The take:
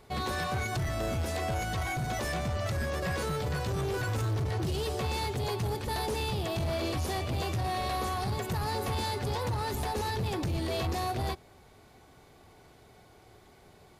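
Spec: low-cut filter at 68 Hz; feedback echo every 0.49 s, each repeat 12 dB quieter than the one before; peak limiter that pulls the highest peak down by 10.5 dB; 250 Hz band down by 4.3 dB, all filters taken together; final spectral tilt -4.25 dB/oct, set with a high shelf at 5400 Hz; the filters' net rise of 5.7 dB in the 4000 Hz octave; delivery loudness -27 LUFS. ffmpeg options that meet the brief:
-af "highpass=68,equalizer=f=250:t=o:g=-7,equalizer=f=4k:t=o:g=8.5,highshelf=f=5.4k:g=-4.5,alimiter=level_in=6.5dB:limit=-24dB:level=0:latency=1,volume=-6.5dB,aecho=1:1:490|980|1470:0.251|0.0628|0.0157,volume=11dB"

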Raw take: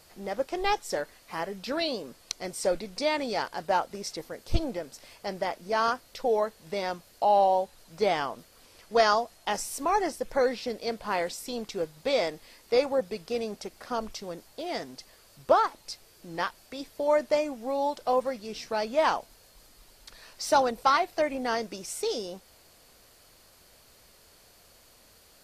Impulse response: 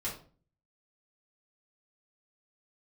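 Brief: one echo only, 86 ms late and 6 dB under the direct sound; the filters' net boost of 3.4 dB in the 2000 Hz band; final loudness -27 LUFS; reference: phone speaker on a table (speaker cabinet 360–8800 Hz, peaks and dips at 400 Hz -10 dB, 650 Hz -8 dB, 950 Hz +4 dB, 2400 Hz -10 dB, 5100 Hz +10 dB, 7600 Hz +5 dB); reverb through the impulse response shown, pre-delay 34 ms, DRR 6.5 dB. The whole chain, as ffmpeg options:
-filter_complex "[0:a]equalizer=f=2k:t=o:g=7,aecho=1:1:86:0.501,asplit=2[a][b];[1:a]atrim=start_sample=2205,adelay=34[c];[b][c]afir=irnorm=-1:irlink=0,volume=-9.5dB[d];[a][d]amix=inputs=2:normalize=0,highpass=f=360:w=0.5412,highpass=f=360:w=1.3066,equalizer=f=400:t=q:w=4:g=-10,equalizer=f=650:t=q:w=4:g=-8,equalizer=f=950:t=q:w=4:g=4,equalizer=f=2.4k:t=q:w=4:g=-10,equalizer=f=5.1k:t=q:w=4:g=10,equalizer=f=7.6k:t=q:w=4:g=5,lowpass=f=8.8k:w=0.5412,lowpass=f=8.8k:w=1.3066,volume=0.5dB"

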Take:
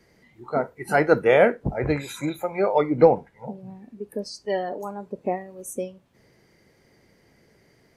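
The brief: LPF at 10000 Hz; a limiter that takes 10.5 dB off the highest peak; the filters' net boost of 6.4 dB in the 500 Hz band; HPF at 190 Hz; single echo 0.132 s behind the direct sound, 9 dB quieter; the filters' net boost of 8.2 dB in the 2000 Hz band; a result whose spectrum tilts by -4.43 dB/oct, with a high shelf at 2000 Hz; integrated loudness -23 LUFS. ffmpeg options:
-af "highpass=190,lowpass=10k,equalizer=f=500:t=o:g=6.5,highshelf=f=2k:g=6,equalizer=f=2k:t=o:g=6.5,alimiter=limit=-8dB:level=0:latency=1,aecho=1:1:132:0.355,volume=-1.5dB"

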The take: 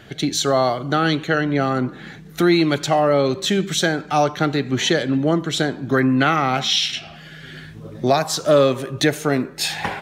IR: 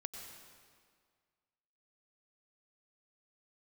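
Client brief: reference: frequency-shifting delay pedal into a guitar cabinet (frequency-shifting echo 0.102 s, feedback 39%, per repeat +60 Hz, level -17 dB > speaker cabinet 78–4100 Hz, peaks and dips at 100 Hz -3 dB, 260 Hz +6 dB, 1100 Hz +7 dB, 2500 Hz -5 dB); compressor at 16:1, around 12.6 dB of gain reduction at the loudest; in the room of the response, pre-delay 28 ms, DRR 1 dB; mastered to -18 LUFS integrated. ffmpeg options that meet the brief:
-filter_complex "[0:a]acompressor=threshold=-23dB:ratio=16,asplit=2[a][b];[1:a]atrim=start_sample=2205,adelay=28[c];[b][c]afir=irnorm=-1:irlink=0,volume=1dB[d];[a][d]amix=inputs=2:normalize=0,asplit=4[e][f][g][h];[f]adelay=102,afreqshift=60,volume=-17dB[i];[g]adelay=204,afreqshift=120,volume=-25.2dB[j];[h]adelay=306,afreqshift=180,volume=-33.4dB[k];[e][i][j][k]amix=inputs=4:normalize=0,highpass=78,equalizer=f=100:t=q:w=4:g=-3,equalizer=f=260:t=q:w=4:g=6,equalizer=f=1.1k:t=q:w=4:g=7,equalizer=f=2.5k:t=q:w=4:g=-5,lowpass=f=4.1k:w=0.5412,lowpass=f=4.1k:w=1.3066,volume=6.5dB"

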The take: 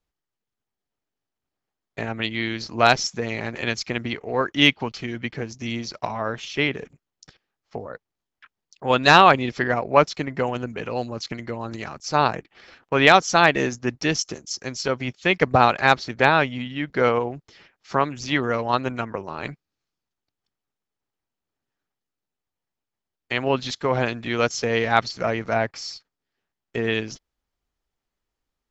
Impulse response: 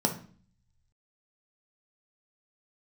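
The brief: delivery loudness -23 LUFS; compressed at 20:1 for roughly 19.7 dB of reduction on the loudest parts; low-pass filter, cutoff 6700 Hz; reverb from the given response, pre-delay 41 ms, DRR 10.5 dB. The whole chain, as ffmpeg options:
-filter_complex "[0:a]lowpass=6.7k,acompressor=threshold=-28dB:ratio=20,asplit=2[a][b];[1:a]atrim=start_sample=2205,adelay=41[c];[b][c]afir=irnorm=-1:irlink=0,volume=-19.5dB[d];[a][d]amix=inputs=2:normalize=0,volume=10.5dB"

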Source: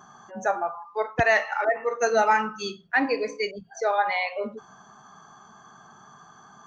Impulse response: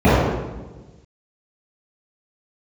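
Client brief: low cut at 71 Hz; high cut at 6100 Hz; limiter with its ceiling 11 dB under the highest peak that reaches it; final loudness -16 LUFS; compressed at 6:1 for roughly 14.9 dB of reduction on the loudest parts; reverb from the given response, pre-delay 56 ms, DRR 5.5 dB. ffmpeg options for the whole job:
-filter_complex "[0:a]highpass=71,lowpass=6.1k,acompressor=threshold=-33dB:ratio=6,alimiter=level_in=7.5dB:limit=-24dB:level=0:latency=1,volume=-7.5dB,asplit=2[a][b];[1:a]atrim=start_sample=2205,adelay=56[c];[b][c]afir=irnorm=-1:irlink=0,volume=-34.5dB[d];[a][d]amix=inputs=2:normalize=0,volume=23.5dB"

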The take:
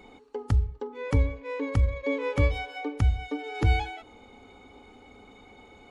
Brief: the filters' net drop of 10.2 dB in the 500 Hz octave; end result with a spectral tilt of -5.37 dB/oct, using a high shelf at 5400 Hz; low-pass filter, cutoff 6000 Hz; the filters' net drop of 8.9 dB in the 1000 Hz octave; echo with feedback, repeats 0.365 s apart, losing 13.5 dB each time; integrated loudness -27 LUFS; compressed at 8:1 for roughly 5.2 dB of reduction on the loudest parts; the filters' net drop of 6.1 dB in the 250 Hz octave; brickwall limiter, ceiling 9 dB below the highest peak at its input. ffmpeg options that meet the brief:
-af "lowpass=6k,equalizer=f=250:t=o:g=-4.5,equalizer=f=500:t=o:g=-8.5,equalizer=f=1k:t=o:g=-8,highshelf=f=5.4k:g=-6.5,acompressor=threshold=-23dB:ratio=8,alimiter=level_in=0.5dB:limit=-24dB:level=0:latency=1,volume=-0.5dB,aecho=1:1:365|730:0.211|0.0444,volume=9.5dB"

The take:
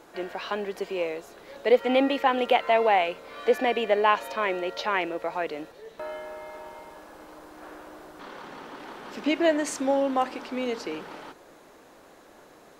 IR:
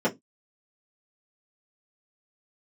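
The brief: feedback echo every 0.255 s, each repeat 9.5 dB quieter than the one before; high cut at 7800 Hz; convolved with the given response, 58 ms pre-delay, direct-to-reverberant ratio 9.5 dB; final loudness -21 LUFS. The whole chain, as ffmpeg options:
-filter_complex "[0:a]lowpass=7.8k,aecho=1:1:255|510|765|1020:0.335|0.111|0.0365|0.012,asplit=2[a][b];[1:a]atrim=start_sample=2205,adelay=58[c];[b][c]afir=irnorm=-1:irlink=0,volume=-23dB[d];[a][d]amix=inputs=2:normalize=0,volume=3.5dB"

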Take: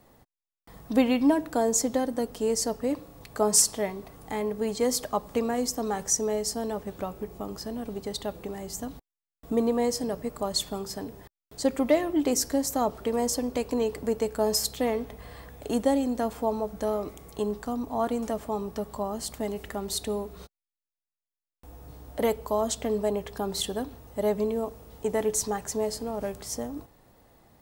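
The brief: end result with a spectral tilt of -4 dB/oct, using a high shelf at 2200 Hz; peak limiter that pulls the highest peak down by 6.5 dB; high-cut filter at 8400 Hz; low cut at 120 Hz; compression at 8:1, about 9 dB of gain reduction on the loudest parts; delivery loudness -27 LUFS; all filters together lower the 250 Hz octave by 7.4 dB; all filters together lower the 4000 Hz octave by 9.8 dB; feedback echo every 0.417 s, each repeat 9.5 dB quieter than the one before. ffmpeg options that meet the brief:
-af "highpass=120,lowpass=8.4k,equalizer=f=250:t=o:g=-8,highshelf=f=2.2k:g=-8.5,equalizer=f=4k:t=o:g=-3.5,acompressor=threshold=-30dB:ratio=8,alimiter=level_in=3.5dB:limit=-24dB:level=0:latency=1,volume=-3.5dB,aecho=1:1:417|834|1251|1668:0.335|0.111|0.0365|0.012,volume=11dB"

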